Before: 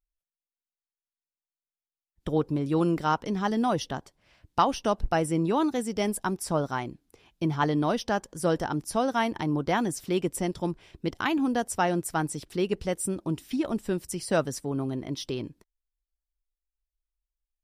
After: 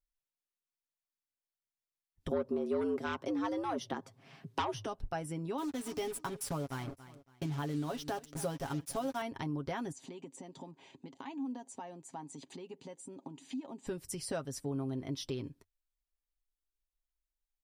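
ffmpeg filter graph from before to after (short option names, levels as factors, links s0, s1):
-filter_complex "[0:a]asettb=1/sr,asplit=3[s0][s1][s2];[s0]atrim=end=2.314[s3];[s1]atrim=start=2.31:end=4.86,asetpts=PTS-STARTPTS,afade=t=in:d=0.004:c=qsin,afade=t=out:st=2.546:d=0.004:c=qsin,highshelf=f=2100:g=-6.5,afreqshift=96,aeval=exprs='0.355*sin(PI/2*2.24*val(0)/0.355)':c=same[s4];[s2]atrim=start=4.856[s5];[s3][s4]acrossfade=d=0.004:c1=hsin:c2=qsin[s6];[s6][s5]acrossfade=d=0.004:c1=qsin:c2=hsin,asettb=1/sr,asplit=3[s7][s8][s9];[s7]atrim=end=5.584[s10];[s8]atrim=start=5.58:end=9.22,asetpts=PTS-STARTPTS,afade=t=in:d=0.004:c=qsin,afade=t=out:st=3.636:d=0.004:c=qsin,aecho=1:1:7.1:0.57,atrim=end_sample=160524,acrusher=bits=5:mix=0:aa=0.5,aecho=1:1:280|560:0.0891|0.0267,atrim=end_sample=160524[s11];[s9]atrim=start=9.216[s12];[s10][s11]acrossfade=d=0.004:c1=hsin:c2=qsin[s13];[s13][s12]acrossfade=d=0.004:c1=qsin:c2=hsin,asettb=1/sr,asplit=3[s14][s15][s16];[s14]atrim=end=9.924[s17];[s15]atrim=start=9.92:end=13.87,asetpts=PTS-STARTPTS,afade=t=in:d=0.004:c=qsin,afade=t=out:st=3.946:d=0.004:c=qsin,asuperstop=centerf=5400:order=8:qfactor=7.3,acompressor=threshold=0.01:ratio=8:attack=3.2:release=140:knee=1:detection=peak,highpass=f=160:w=0.5412,highpass=f=160:w=1.3066,equalizer=f=260:t=q:w=4:g=8,equalizer=f=890:t=q:w=4:g=10,equalizer=f=1400:t=q:w=4:g=-8,equalizer=f=6800:t=q:w=4:g=6,lowpass=f=8100:w=0.5412,lowpass=f=8100:w=1.3066[s18];[s16]atrim=start=13.866[s19];[s17][s18]acrossfade=d=0.004:c1=hsin:c2=qsin[s20];[s20][s19]acrossfade=d=0.004:c1=qsin:c2=hsin,acompressor=threshold=0.0282:ratio=4,equalizer=f=89:t=o:w=0.38:g=7.5,aecho=1:1:7.4:0.48,volume=0.562"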